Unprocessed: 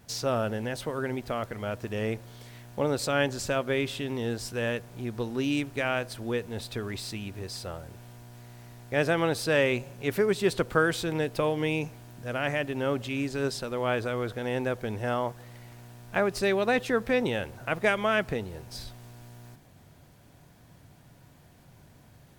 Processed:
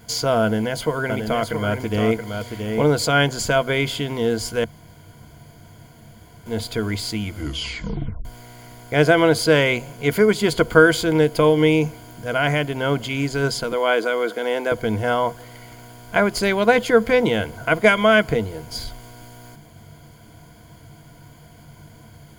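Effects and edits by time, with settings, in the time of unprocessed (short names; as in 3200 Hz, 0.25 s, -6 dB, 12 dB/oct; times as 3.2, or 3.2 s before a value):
0.42–2.93 echo 0.675 s -6 dB
4.64–6.46 room tone
7.21 tape stop 1.04 s
13.72–14.72 HPF 250 Hz 24 dB/oct
whole clip: ripple EQ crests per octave 1.8, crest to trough 11 dB; gain +8 dB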